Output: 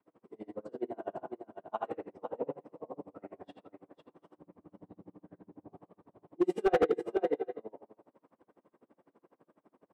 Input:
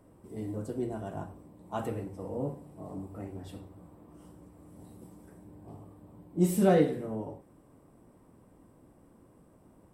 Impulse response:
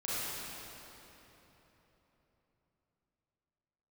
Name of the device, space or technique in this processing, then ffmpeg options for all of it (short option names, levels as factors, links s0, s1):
helicopter radio: -filter_complex "[0:a]asettb=1/sr,asplit=3[s0][s1][s2];[s0]atrim=end=4.374[s3];[s1]atrim=start=4.37:end=5.73,asetpts=PTS-STARTPTS,afade=t=in:d=0.004:c=qsin,afade=t=out:st=1.356:d=0.004:c=qsin,aemphasis=mode=reproduction:type=riaa[s4];[s2]atrim=start=5.726[s5];[s3][s4]acrossfade=d=0.004:c1=hsin:c2=qsin[s6];[s6][s5]acrossfade=d=0.004:c1=qsin:c2=hsin,asettb=1/sr,asplit=3[s7][s8][s9];[s7]atrim=end=6.354[s10];[s8]atrim=start=6.35:end=7.06,asetpts=PTS-STARTPTS,afade=t=in:d=0.004:c=qsin,afade=t=out:st=0.706:d=0.004:c=qsin,aecho=1:1:2.5:0.85,atrim=end_sample=31311[s11];[s9]atrim=start=7.056[s12];[s10][s11]acrossfade=d=0.004:c1=hsin:c2=qsin[s13];[s13][s12]acrossfade=d=0.004:c1=qsin:c2=hsin,adynamicequalizer=threshold=0.01:dfrequency=540:dqfactor=0.93:tfrequency=540:tqfactor=0.93:attack=5:release=100:ratio=0.375:range=2:mode=boostabove:tftype=bell,highpass=350,lowpass=2700,aecho=1:1:61|504|742:0.668|0.447|0.106,aeval=exprs='val(0)*pow(10,-32*(0.5-0.5*cos(2*PI*12*n/s))/20)':c=same,asoftclip=type=hard:threshold=0.0841,volume=1.26"